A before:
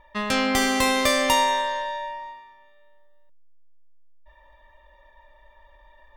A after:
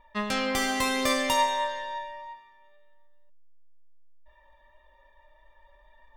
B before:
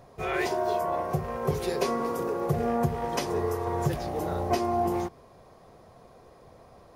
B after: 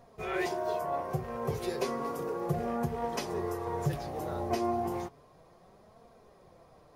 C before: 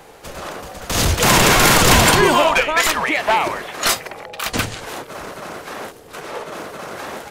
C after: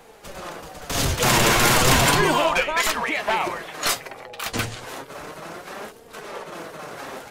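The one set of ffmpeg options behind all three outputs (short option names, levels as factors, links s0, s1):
-af "flanger=delay=4.2:depth=4.7:regen=52:speed=0.33:shape=triangular,volume=0.891"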